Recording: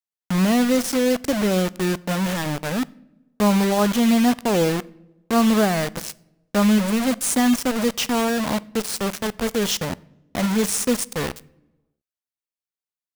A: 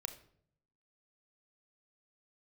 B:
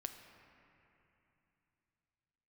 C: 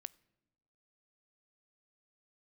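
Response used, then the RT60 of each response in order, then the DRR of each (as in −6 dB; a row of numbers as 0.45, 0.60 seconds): C; 0.65 s, 3.0 s, non-exponential decay; 7.5, 5.5, 20.0 decibels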